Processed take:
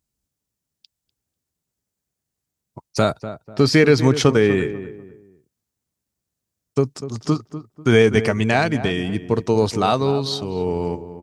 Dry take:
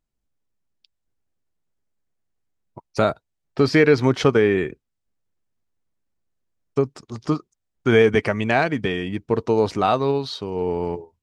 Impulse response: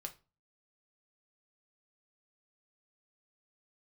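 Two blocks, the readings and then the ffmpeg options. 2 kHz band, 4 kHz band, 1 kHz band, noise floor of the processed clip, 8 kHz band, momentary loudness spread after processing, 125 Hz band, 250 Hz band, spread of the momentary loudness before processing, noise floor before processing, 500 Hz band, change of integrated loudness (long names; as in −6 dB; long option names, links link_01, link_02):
+1.0 dB, +5.0 dB, +0.5 dB, −83 dBFS, can't be measured, 13 LU, +4.5 dB, +2.5 dB, 12 LU, −79 dBFS, +0.5 dB, +1.5 dB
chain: -filter_complex "[0:a]highpass=58,bass=frequency=250:gain=5,treble=frequency=4000:gain=11,asplit=2[link_01][link_02];[link_02]adelay=246,lowpass=frequency=1400:poles=1,volume=-12dB,asplit=2[link_03][link_04];[link_04]adelay=246,lowpass=frequency=1400:poles=1,volume=0.32,asplit=2[link_05][link_06];[link_06]adelay=246,lowpass=frequency=1400:poles=1,volume=0.32[link_07];[link_01][link_03][link_05][link_07]amix=inputs=4:normalize=0"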